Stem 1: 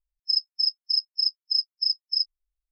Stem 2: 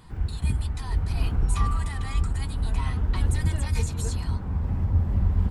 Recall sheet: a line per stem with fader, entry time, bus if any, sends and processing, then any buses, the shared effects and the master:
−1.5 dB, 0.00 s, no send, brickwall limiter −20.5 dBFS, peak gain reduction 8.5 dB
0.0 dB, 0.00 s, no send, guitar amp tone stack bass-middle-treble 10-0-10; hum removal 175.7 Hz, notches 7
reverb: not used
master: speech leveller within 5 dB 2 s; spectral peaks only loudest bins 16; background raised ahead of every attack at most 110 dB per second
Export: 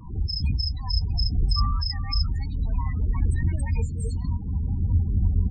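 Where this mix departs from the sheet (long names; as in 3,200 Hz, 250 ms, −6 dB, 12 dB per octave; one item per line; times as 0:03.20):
stem 2: missing guitar amp tone stack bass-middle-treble 10-0-10
master: missing speech leveller within 5 dB 2 s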